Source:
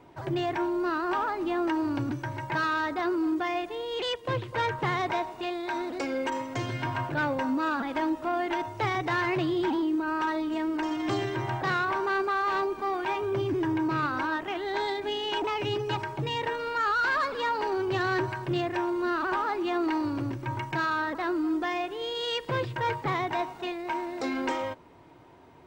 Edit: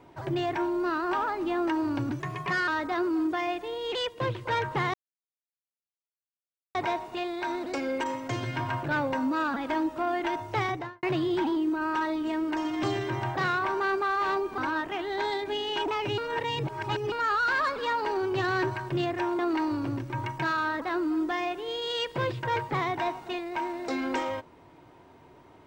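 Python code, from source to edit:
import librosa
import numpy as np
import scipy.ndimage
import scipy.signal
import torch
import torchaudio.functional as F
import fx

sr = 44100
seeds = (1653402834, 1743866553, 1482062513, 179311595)

y = fx.studio_fade_out(x, sr, start_s=8.9, length_s=0.39)
y = fx.edit(y, sr, fx.speed_span(start_s=2.2, length_s=0.55, speed=1.15),
    fx.insert_silence(at_s=5.01, length_s=1.81),
    fx.cut(start_s=12.84, length_s=1.3),
    fx.reverse_span(start_s=15.74, length_s=0.94),
    fx.cut(start_s=18.95, length_s=0.77), tone=tone)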